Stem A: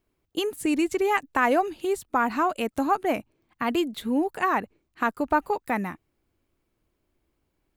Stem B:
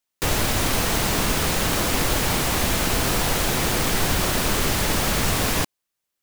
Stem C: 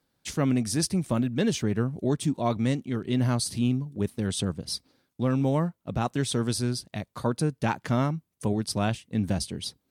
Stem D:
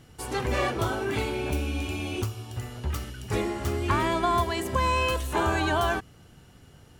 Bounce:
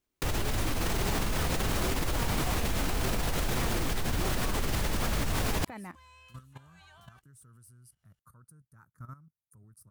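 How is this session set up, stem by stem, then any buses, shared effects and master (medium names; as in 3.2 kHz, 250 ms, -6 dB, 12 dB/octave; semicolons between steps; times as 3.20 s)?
-9.0 dB, 0.00 s, no send, compressor with a negative ratio -26 dBFS
+2.5 dB, 0.00 s, no send, peak limiter -18.5 dBFS, peak gain reduction 10 dB; bass shelf 98 Hz +9 dB
-15.0 dB, 1.10 s, no send, de-esser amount 55%; FFT filter 130 Hz 0 dB, 230 Hz -12 dB, 800 Hz -19 dB, 1.3 kHz +4 dB, 2.9 kHz -30 dB, 11 kHz +12 dB
-15.0 dB, 1.20 s, no send, amplifier tone stack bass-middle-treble 10-0-10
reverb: none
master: treble shelf 3.3 kHz -3.5 dB; level held to a coarse grid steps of 14 dB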